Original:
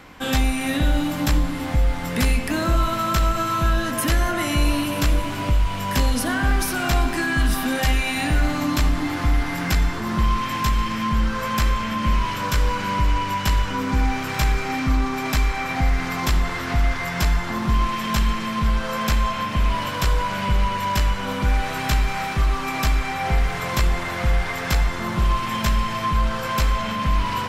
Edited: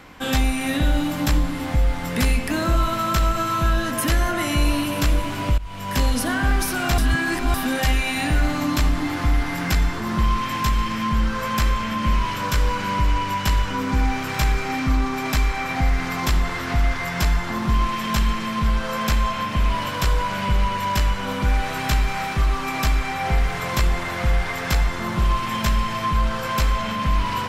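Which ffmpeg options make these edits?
-filter_complex "[0:a]asplit=4[a][b][c][d];[a]atrim=end=5.58,asetpts=PTS-STARTPTS,afade=t=out:st=5.576:d=0.004:c=hsin:silence=0.112202[e];[b]atrim=start=5.58:end=6.982,asetpts=PTS-STARTPTS,afade=t=in:d=0.45:silence=0.112202[f];[c]atrim=start=6.978:end=7.542,asetpts=PTS-STARTPTS,areverse[g];[d]atrim=start=7.538[h];[e][f]concat=n=2:v=0:a=1[i];[i][g]acrossfade=d=0.004:c1=hsin:c2=hsin[j];[j][h]acrossfade=d=0.004:c1=hsin:c2=hsin"

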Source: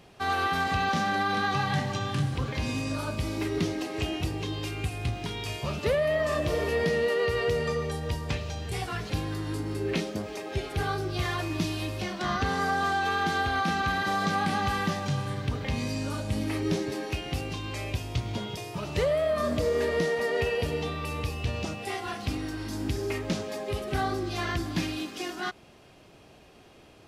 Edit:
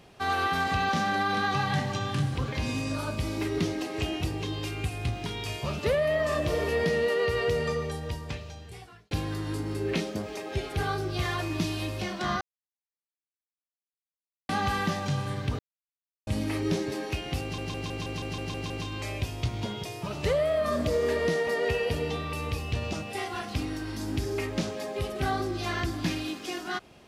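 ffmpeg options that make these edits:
-filter_complex "[0:a]asplit=14[a][b][c][d][e][f][g][h][i][j][k][l][m][n];[a]atrim=end=9.11,asetpts=PTS-STARTPTS,afade=t=out:st=7.67:d=1.44[o];[b]atrim=start=9.11:end=12.41,asetpts=PTS-STARTPTS,afade=t=in:d=0.004:c=hsin,afade=t=out:st=3.296:d=0.004:c=hsin[p];[c]atrim=start=12.41:end=14.49,asetpts=PTS-STARTPTS,volume=0[q];[d]atrim=start=14.49:end=15.59,asetpts=PTS-STARTPTS,afade=t=in:d=0.004:c=hsin,afade=t=out:st=1.096:d=0.004:c=hsin[r];[e]atrim=start=15.59:end=16.27,asetpts=PTS-STARTPTS,volume=0[s];[f]atrim=start=16.27:end=17.582,asetpts=PTS-STARTPTS,afade=t=in:d=0.004:c=hsin[t];[g]atrim=start=17.418:end=17.582[u];[h]atrim=start=17.418:end=17.582[v];[i]atrim=start=17.418:end=17.582[w];[j]atrim=start=17.418:end=17.582[x];[k]atrim=start=17.418:end=17.582[y];[l]atrim=start=17.418:end=17.582[z];[m]atrim=start=17.418:end=17.582[aa];[n]atrim=start=17.418[ab];[o][p][q][r][s][t]concat=n=6:v=0:a=1[ac];[ac][u]acrossfade=d=0.004:c1=hsin:c2=hsin[ad];[ad][v]acrossfade=d=0.004:c1=hsin:c2=hsin[ae];[ae][w]acrossfade=d=0.004:c1=hsin:c2=hsin[af];[af][x]acrossfade=d=0.004:c1=hsin:c2=hsin[ag];[ag][y]acrossfade=d=0.004:c1=hsin:c2=hsin[ah];[ah][z]acrossfade=d=0.004:c1=hsin:c2=hsin[ai];[ai][aa]acrossfade=d=0.004:c1=hsin:c2=hsin[aj];[aj][ab]acrossfade=d=0.004:c1=hsin:c2=hsin"

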